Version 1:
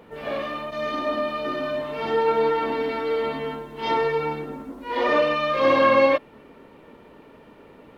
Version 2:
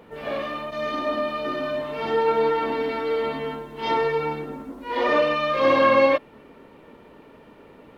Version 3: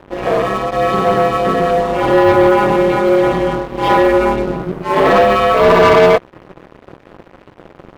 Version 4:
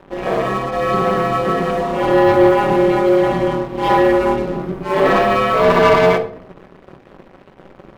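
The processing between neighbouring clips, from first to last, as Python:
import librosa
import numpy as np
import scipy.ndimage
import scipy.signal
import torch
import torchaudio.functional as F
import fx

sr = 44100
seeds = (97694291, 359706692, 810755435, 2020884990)

y1 = x
y2 = fx.high_shelf(y1, sr, hz=2100.0, db=-12.0)
y2 = y2 * np.sin(2.0 * np.pi * 95.0 * np.arange(len(y2)) / sr)
y2 = fx.leveller(y2, sr, passes=3)
y2 = y2 * 10.0 ** (7.0 / 20.0)
y3 = fx.room_shoebox(y2, sr, seeds[0], volume_m3=880.0, walls='furnished', distance_m=1.1)
y3 = y3 * 10.0 ** (-4.0 / 20.0)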